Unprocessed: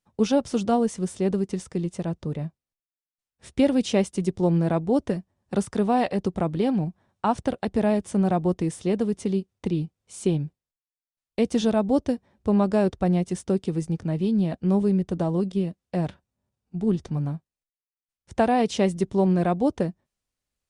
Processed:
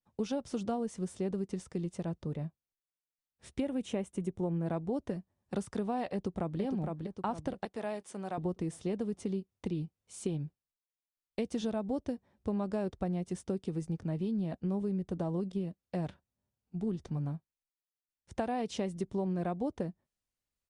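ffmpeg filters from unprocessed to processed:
ffmpeg -i in.wav -filter_complex "[0:a]asettb=1/sr,asplit=3[link_01][link_02][link_03];[link_01]atrim=end=3.604[link_04];[link_02]atrim=start=3.6:end=4.66,asetpts=PTS-STARTPTS,afade=type=in:duration=0.004:curve=qsin,afade=type=out:start_time=1.056:duration=0.004:curve=qsin,equalizer=frequency=4700:width=2.2:gain=-13.5[link_05];[link_03]atrim=start=4.656[link_06];[link_04][link_05]acrossfade=duration=0.004:curve1=hsin:curve2=qsin[link_07];[link_07][link_06]acrossfade=duration=0.004:curve1=qsin:curve2=hsin,asplit=2[link_08][link_09];[link_09]afade=type=in:start_time=6.13:duration=0.01,afade=type=out:start_time=6.6:duration=0.01,aecho=0:1:460|920|1380|1840|2300|2760:0.595662|0.268048|0.120622|0.0542797|0.0244259|0.0109916[link_10];[link_08][link_10]amix=inputs=2:normalize=0,asettb=1/sr,asplit=3[link_11][link_12][link_13];[link_11]atrim=end=7.654[link_14];[link_12]atrim=start=7.65:end=8.38,asetpts=PTS-STARTPTS,afade=type=in:duration=0.004:curve=qsin,afade=type=out:start_time=0.726:duration=0.004:curve=qsin,highpass=frequency=950:poles=1[link_15];[link_13]atrim=start=8.376[link_16];[link_14][link_15]acrossfade=duration=0.004:curve1=hsin:curve2=qsin[link_17];[link_17][link_16]acrossfade=duration=0.004:curve1=qsin:curve2=hsin,acompressor=threshold=-23dB:ratio=6,adynamicequalizer=threshold=0.00447:dfrequency=1800:dqfactor=0.7:tfrequency=1800:tqfactor=0.7:attack=5:release=100:ratio=0.375:range=1.5:mode=cutabove:tftype=highshelf,volume=-7dB" out.wav

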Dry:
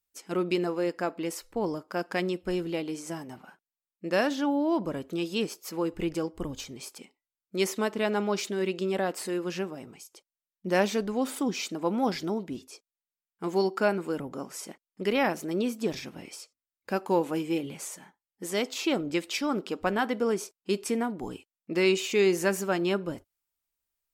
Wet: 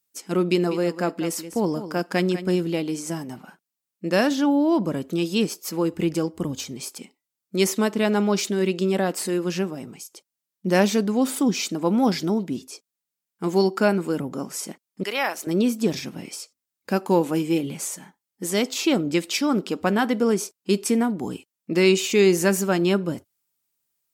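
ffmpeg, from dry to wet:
ffmpeg -i in.wav -filter_complex "[0:a]asettb=1/sr,asplit=3[link_01][link_02][link_03];[link_01]atrim=end=0.464[link_04];[link_02]atrim=start=0.46:end=2.64,asetpts=PTS-STARTPTS,afade=type=in:duration=0.004:curve=qsin,afade=type=out:start_time=2.176:duration=0.004:curve=qsin,aecho=1:1:198:0.251,atrim=end_sample=96138[link_05];[link_03]atrim=start=2.636[link_06];[link_04][link_05]acrossfade=duration=0.004:curve1=hsin:curve2=qsin[link_07];[link_07][link_06]acrossfade=duration=0.004:curve1=qsin:curve2=hsin,asettb=1/sr,asplit=3[link_08][link_09][link_10];[link_08]atrim=end=15.034[link_11];[link_09]atrim=start=15.03:end=15.47,asetpts=PTS-STARTPTS,afade=type=in:duration=0.004:curve=qsin,afade=type=out:start_time=0.436:duration=0.004:curve=qsin,highpass=730[link_12];[link_10]atrim=start=15.466[link_13];[link_11][link_12]acrossfade=duration=0.004:curve1=hsin:curve2=qsin[link_14];[link_14][link_13]acrossfade=duration=0.004:curve1=qsin:curve2=hsin,highpass=170,bass=frequency=250:gain=11,treble=frequency=4000:gain=5,volume=4dB" out.wav

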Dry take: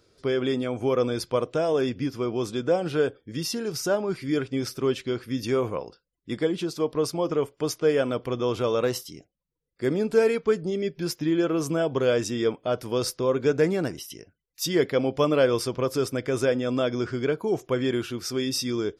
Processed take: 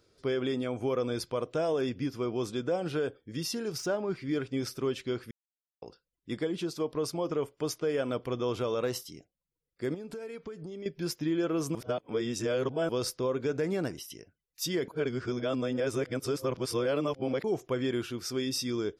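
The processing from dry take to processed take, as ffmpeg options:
ffmpeg -i in.wav -filter_complex "[0:a]asettb=1/sr,asplit=3[link_01][link_02][link_03];[link_01]atrim=end=3.784[link_04];[link_02]atrim=start=3.78:end=4.4,asetpts=PTS-STARTPTS,afade=type=in:duration=0.004:curve=qsin,afade=type=out:start_time=0.616:duration=0.004:curve=qsin,adynamicsmooth=sensitivity=6.5:basefreq=5100[link_05];[link_03]atrim=start=4.396[link_06];[link_04][link_05]acrossfade=duration=0.004:curve1=hsin:curve2=qsin[link_07];[link_07][link_06]acrossfade=duration=0.004:curve1=qsin:curve2=hsin,asettb=1/sr,asplit=3[link_08][link_09][link_10];[link_08]atrim=end=9.944[link_11];[link_09]atrim=start=9.94:end=10.86,asetpts=PTS-STARTPTS,afade=type=in:duration=0.004:curve=qsin,afade=type=out:start_time=0.916:duration=0.004:curve=qsin,acompressor=threshold=-32dB:ratio=20:attack=3.2:release=140:knee=1:detection=peak[link_12];[link_10]atrim=start=10.856[link_13];[link_11][link_12]acrossfade=duration=0.004:curve1=hsin:curve2=qsin[link_14];[link_14][link_13]acrossfade=duration=0.004:curve1=qsin:curve2=hsin,asplit=7[link_15][link_16][link_17][link_18][link_19][link_20][link_21];[link_15]atrim=end=5.31,asetpts=PTS-STARTPTS,afade=type=out:start_time=5.306:duration=0.004:curve=hsin[link_22];[link_16]atrim=start=5.31:end=5.82,asetpts=PTS-STARTPTS,volume=0[link_23];[link_17]atrim=start=5.82:end=11.752,asetpts=PTS-STARTPTS,afade=type=in:duration=0.004:curve=hsin[link_24];[link_18]atrim=start=11.748:end=12.892,asetpts=PTS-STARTPTS,areverse[link_25];[link_19]atrim=start=12.888:end=14.882[link_26];[link_20]atrim=start=14.878:end=17.442,asetpts=PTS-STARTPTS,areverse[link_27];[link_21]atrim=start=17.438[link_28];[link_22][link_23][link_24]concat=n=3:v=0:a=1[link_29];[link_29][link_25]acrossfade=duration=0.004:curve1=hsin:curve2=hsin[link_30];[link_30][link_26]acrossfade=duration=0.004:curve1=hsin:curve2=hsin[link_31];[link_31][link_27]acrossfade=duration=0.004:curve1=hsin:curve2=hsin[link_32];[link_32][link_28]acrossfade=duration=0.004:curve1=hsin:curve2=hsin,alimiter=limit=-17dB:level=0:latency=1:release=93,volume=-4.5dB" out.wav

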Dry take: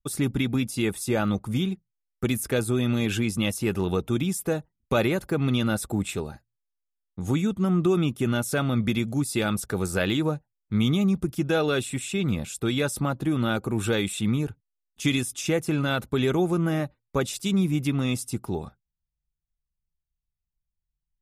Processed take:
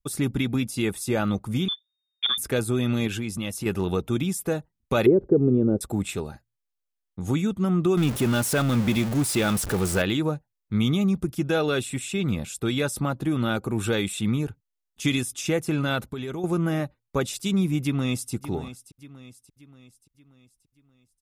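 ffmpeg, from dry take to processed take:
ffmpeg -i in.wav -filter_complex "[0:a]asettb=1/sr,asplit=3[link_01][link_02][link_03];[link_01]atrim=end=1.684[link_04];[link_02]atrim=start=1.68:end=2.38,asetpts=PTS-STARTPTS,afade=type=in:duration=0.004:curve=qsin,afade=type=out:start_time=0.696:duration=0.004:curve=qsin,lowpass=frequency=3100:width_type=q:width=0.5098,lowpass=frequency=3100:width_type=q:width=0.6013,lowpass=frequency=3100:width_type=q:width=0.9,lowpass=frequency=3100:width_type=q:width=2.563,afreqshift=-3700[link_05];[link_03]atrim=start=2.376[link_06];[link_04][link_05]acrossfade=duration=0.004:curve1=hsin:curve2=qsin[link_07];[link_07][link_06]acrossfade=duration=0.004:curve1=qsin:curve2=hsin,asettb=1/sr,asplit=3[link_08][link_09][link_10];[link_08]atrim=end=3.074[link_11];[link_09]atrim=start=3.07:end=3.66,asetpts=PTS-STARTPTS,afade=type=in:duration=0.004:curve=qsin,afade=type=out:start_time=0.586:duration=0.004:curve=qsin,acompressor=threshold=-29dB:ratio=2:attack=3.2:release=140:knee=1:detection=peak[link_12];[link_10]atrim=start=3.656[link_13];[link_11][link_12]acrossfade=duration=0.004:curve1=hsin:curve2=qsin[link_14];[link_14][link_13]acrossfade=duration=0.004:curve1=qsin:curve2=hsin,asettb=1/sr,asplit=3[link_15][link_16][link_17];[link_15]atrim=end=5.064[link_18];[link_16]atrim=start=5.06:end=5.81,asetpts=PTS-STARTPTS,afade=type=in:duration=0.004:curve=qsin,afade=type=out:start_time=0.746:duration=0.004:curve=qsin,lowpass=frequency=410:width_type=q:width=4.6[link_19];[link_17]atrim=start=5.806[link_20];[link_18][link_19]acrossfade=duration=0.004:curve1=hsin:curve2=qsin[link_21];[link_21][link_20]acrossfade=duration=0.004:curve1=qsin:curve2=hsin,asettb=1/sr,asplit=3[link_22][link_23][link_24];[link_22]atrim=end=7.974[link_25];[link_23]atrim=start=7.97:end=10.02,asetpts=PTS-STARTPTS,afade=type=in:duration=0.004:curve=qsin,afade=type=out:start_time=2.046:duration=0.004:curve=qsin,aeval=exprs='val(0)+0.5*0.0447*sgn(val(0))':channel_layout=same[link_26];[link_24]atrim=start=10.016[link_27];[link_25][link_26]acrossfade=duration=0.004:curve1=hsin:curve2=qsin[link_28];[link_28][link_27]acrossfade=duration=0.004:curve1=qsin:curve2=hsin,asettb=1/sr,asplit=3[link_29][link_30][link_31];[link_29]atrim=end=16.044[link_32];[link_30]atrim=start=16.04:end=16.44,asetpts=PTS-STARTPTS,afade=type=in:duration=0.004:curve=qsin,afade=type=out:start_time=0.396:duration=0.004:curve=qsin,acompressor=threshold=-29dB:ratio=5:attack=3.2:release=140:knee=1:detection=peak[link_33];[link_31]atrim=start=16.436[link_34];[link_32][link_33]acrossfade=duration=0.004:curve1=hsin:curve2=qsin[link_35];[link_35][link_34]acrossfade=duration=0.004:curve1=qsin:curve2=hsin,asplit=2[link_36][link_37];[link_37]afade=type=in:start_time=17.82:duration=0.01,afade=type=out:start_time=18.33:duration=0.01,aecho=0:1:580|1160|1740|2320|2900:0.199526|0.0997631|0.0498816|0.0249408|0.0124704[link_38];[link_36][link_38]amix=inputs=2:normalize=0" out.wav

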